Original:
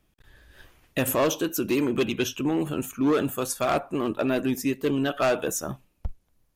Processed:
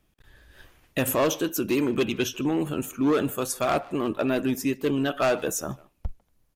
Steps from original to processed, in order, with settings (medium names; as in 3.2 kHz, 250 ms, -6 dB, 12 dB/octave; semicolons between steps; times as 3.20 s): speakerphone echo 150 ms, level -19 dB